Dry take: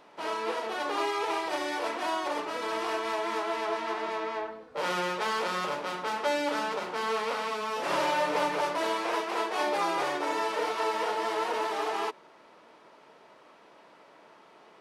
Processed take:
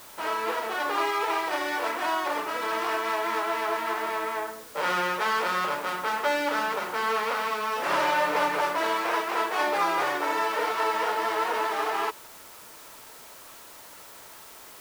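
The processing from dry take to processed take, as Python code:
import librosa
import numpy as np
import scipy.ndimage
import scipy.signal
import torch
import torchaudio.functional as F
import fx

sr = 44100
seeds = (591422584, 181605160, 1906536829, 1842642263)

y = fx.peak_eq(x, sr, hz=1500.0, db=6.5, octaves=1.5)
y = fx.quant_dither(y, sr, seeds[0], bits=8, dither='triangular')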